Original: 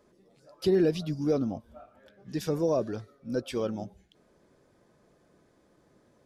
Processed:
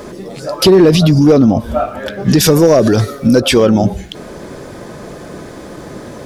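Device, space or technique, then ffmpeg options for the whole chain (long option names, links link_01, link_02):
loud club master: -filter_complex "[0:a]asettb=1/sr,asplit=3[link_01][link_02][link_03];[link_01]atrim=end=2.424[link_04];[link_02]atrim=start=2.42:end=3.4,asetpts=PTS-STARTPTS,afade=type=in:duration=0.004:curve=qsin,afade=type=out:start_time=0.976:duration=0.004:curve=qsin,aemphasis=mode=production:type=cd[link_05];[link_03]atrim=start=3.396[link_06];[link_04][link_05]acrossfade=duration=0.004:curve1=hsin:curve2=qsin[link_07];[link_07][link_06]acrossfade=duration=0.004:curve1=qsin:curve2=hsin,acompressor=threshold=-32dB:ratio=2,asoftclip=type=hard:threshold=-26dB,alimiter=level_in=35.5dB:limit=-1dB:release=50:level=0:latency=1,volume=-1.5dB"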